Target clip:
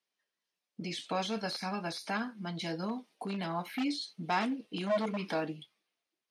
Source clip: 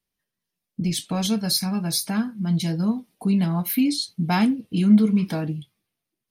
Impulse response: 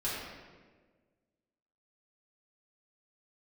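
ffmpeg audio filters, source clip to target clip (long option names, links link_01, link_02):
-filter_complex "[0:a]aeval=exprs='0.188*(abs(mod(val(0)/0.188+3,4)-2)-1)':channel_layout=same,alimiter=limit=-18.5dB:level=0:latency=1:release=14,acrossover=split=2700[link_01][link_02];[link_02]acompressor=threshold=-40dB:ratio=4:attack=1:release=60[link_03];[link_01][link_03]amix=inputs=2:normalize=0,highpass=440,lowpass=6400"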